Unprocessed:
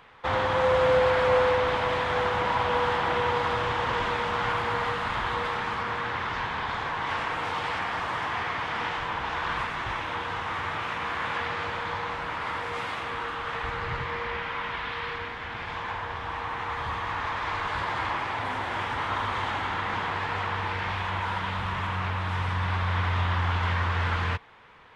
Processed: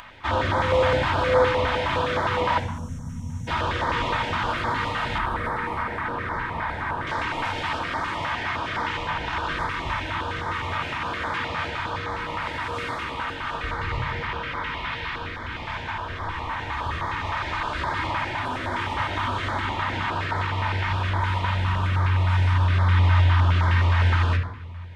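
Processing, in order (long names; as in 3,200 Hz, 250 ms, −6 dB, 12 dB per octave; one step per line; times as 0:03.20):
0:02.59–0:03.48: gain on a spectral selection 270–5,400 Hz −29 dB
0:05.18–0:07.07: flat-topped bell 4,400 Hz −10.5 dB
rectangular room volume 3,800 cubic metres, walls furnished, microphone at 2.7 metres
upward compression, threshold −39 dBFS
notch on a step sequencer 9.7 Hz 380–2,700 Hz
level +2.5 dB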